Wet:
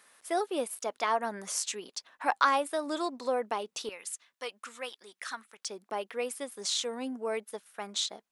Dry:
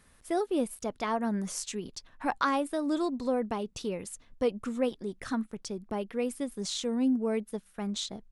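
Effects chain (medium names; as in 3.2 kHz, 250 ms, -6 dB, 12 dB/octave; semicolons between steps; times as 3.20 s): high-pass 570 Hz 12 dB/octave, from 3.89 s 1.3 kHz, from 5.68 s 620 Hz; trim +4 dB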